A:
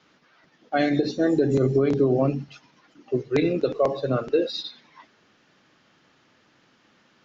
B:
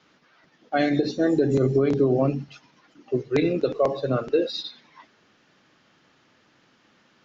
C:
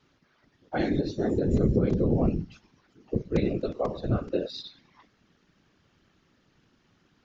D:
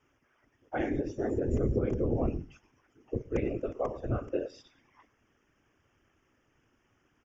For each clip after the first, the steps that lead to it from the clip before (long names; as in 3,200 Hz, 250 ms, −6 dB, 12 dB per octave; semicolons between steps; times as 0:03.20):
no processing that can be heard
bass and treble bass +12 dB, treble +2 dB; random phases in short frames; level −8.5 dB
Butterworth band-reject 4,100 Hz, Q 1.7; parametric band 180 Hz −11.5 dB 0.58 octaves; single-tap delay 115 ms −23 dB; level −3 dB